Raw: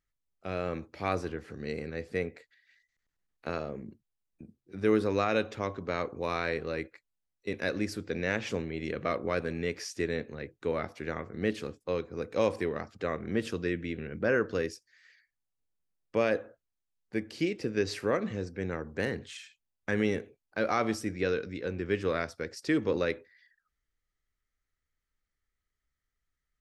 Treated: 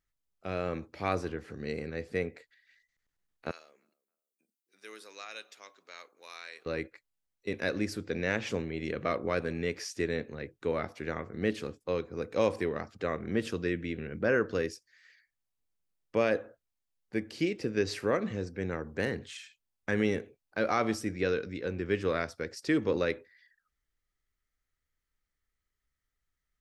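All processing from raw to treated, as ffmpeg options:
-filter_complex "[0:a]asettb=1/sr,asplit=3[s0][s1][s2];[s0]atrim=end=3.514[s3];[s1]atrim=start=3.51:end=6.66,asetpts=PTS-STARTPTS,afade=t=in:d=0.004:c=qsin,afade=t=out:st=3.146:d=0.004:c=qsin,highpass=240,aderivative,asplit=2[s4][s5];[s5]adelay=283,lowpass=f=1300:p=1,volume=0.0631,asplit=2[s6][s7];[s7]adelay=283,lowpass=f=1300:p=1,volume=0.31[s8];[s4][s6][s8]amix=inputs=3:normalize=0,atrim=end_sample=138915[s9];[s2]atrim=start=6.656[s10];[s3][s9]acrossfade=d=0.004:c1=hsin:c2=qsin[s11];[s11][s10]acrossfade=d=0.004:c1=qsin:c2=hsin"

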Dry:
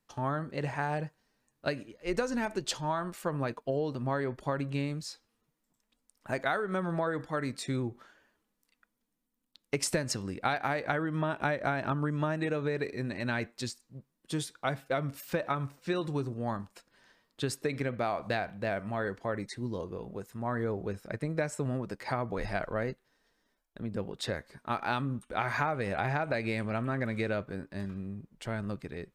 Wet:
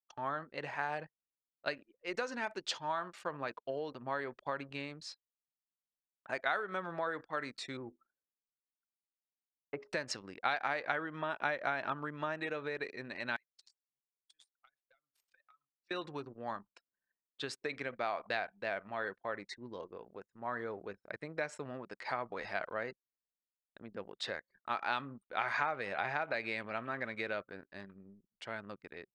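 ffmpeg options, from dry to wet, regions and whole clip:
-filter_complex "[0:a]asettb=1/sr,asplit=3[s0][s1][s2];[s0]atrim=end=7.774[s3];[s1]atrim=start=7.77:end=9.93,asetpts=PTS-STARTPTS,afade=t=in:d=0.004:c=qsin,afade=t=out:st=2.156:d=0.004:c=qsin,lowpass=1200,bandreject=f=83.07:t=h:w=4,bandreject=f=166.14:t=h:w=4,bandreject=f=249.21:t=h:w=4,bandreject=f=332.28:t=h:w=4,bandreject=f=415.35:t=h:w=4,bandreject=f=498.42:t=h:w=4,bandreject=f=581.49:t=h:w=4,bandreject=f=664.56:t=h:w=4,bandreject=f=747.63:t=h:w=4[s4];[s2]atrim=start=9.926[s5];[s3][s4]acrossfade=d=0.004:c1=hsin:c2=qsin[s6];[s6][s5]acrossfade=d=0.004:c1=qsin:c2=hsin,asettb=1/sr,asplit=3[s7][s8][s9];[s7]atrim=end=13.364[s10];[s8]atrim=start=13.36:end=15.91,asetpts=PTS-STARTPTS,afade=t=in:d=0.004:c=qsin,afade=t=out:st=2.546:d=0.004:c=qsin,aderivative,acompressor=threshold=0.00316:ratio=6:attack=3.2:release=140:knee=1:detection=peak,acrusher=bits=2:mode=log:mix=0:aa=0.000001[s11];[s9]atrim=start=15.906[s12];[s10][s11]acrossfade=d=0.004:c1=hsin:c2=qsin[s13];[s13][s12]acrossfade=d=0.004:c1=qsin:c2=hsin,highpass=f=1000:p=1,anlmdn=0.00631,lowpass=4600"

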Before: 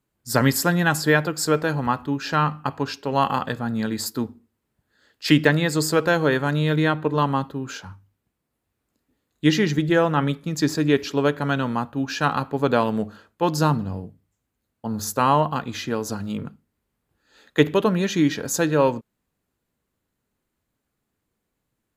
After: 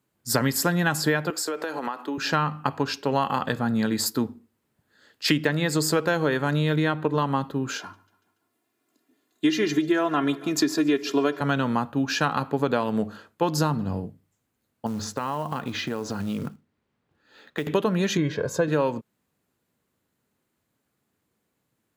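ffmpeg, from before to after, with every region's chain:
-filter_complex "[0:a]asettb=1/sr,asplit=3[s0][s1][s2];[s0]atrim=end=1.304[s3];[s1]atrim=start=1.3:end=2.18,asetpts=PTS-STARTPTS,afade=t=in:d=0.004:c=qsin,afade=t=out:st=0.876:d=0.004:c=qsin,highpass=f=300:w=0.5412,highpass=f=300:w=1.3066,acompressor=threshold=0.0447:ratio=16:attack=3.2:release=140:knee=1:detection=peak[s4];[s2]atrim=start=2.176[s5];[s3][s4]acrossfade=d=0.004:c1=hsin:c2=qsin[s6];[s6][s5]acrossfade=d=0.004:c1=qsin:c2=hsin,asettb=1/sr,asplit=3[s7][s8][s9];[s7]atrim=end=7.794[s10];[s8]atrim=start=7.79:end=11.41,asetpts=PTS-STARTPTS,afade=t=in:d=0.004:c=qsin,afade=t=out:st=3.616:d=0.004:c=qsin,highpass=f=150:w=0.5412,highpass=f=150:w=1.3066,aecho=1:1:2.9:0.73,atrim=end_sample=159642,aecho=1:1:143|286|429|572:0.0708|0.0382|0.0206|0.0111,atrim=end_sample=159642[s11];[s9]atrim=start=11.406[s12];[s10][s11]acrossfade=d=0.004:c1=hsin:c2=qsin[s13];[s13][s12]acrossfade=d=0.004:c1=qsin:c2=hsin,asettb=1/sr,asplit=3[s14][s15][s16];[s14]atrim=end=14.864[s17];[s15]atrim=start=14.86:end=17.67,asetpts=PTS-STARTPTS,afade=t=in:d=0.004:c=qsin,afade=t=out:st=2.806:d=0.004:c=qsin,lowpass=4300,acompressor=threshold=0.0447:ratio=8:attack=3.2:release=140:knee=1:detection=peak,acrusher=bits=6:mode=log:mix=0:aa=0.000001[s18];[s16]atrim=start=17.666[s19];[s17][s18]acrossfade=d=0.004:c1=hsin:c2=qsin[s20];[s20][s19]acrossfade=d=0.004:c1=qsin:c2=hsin,asettb=1/sr,asplit=3[s21][s22][s23];[s21]atrim=end=18.174[s24];[s22]atrim=start=18.17:end=18.68,asetpts=PTS-STARTPTS,afade=t=in:d=0.004:c=qsin,afade=t=out:st=0.506:d=0.004:c=qsin,lowpass=f=1100:p=1,aecho=1:1:1.9:0.75,atrim=end_sample=22491[s25];[s23]atrim=start=18.676[s26];[s24][s25]acrossfade=d=0.004:c1=hsin:c2=qsin[s27];[s27][s26]acrossfade=d=0.004:c1=qsin:c2=hsin,highpass=98,acompressor=threshold=0.0794:ratio=6,volume=1.41"

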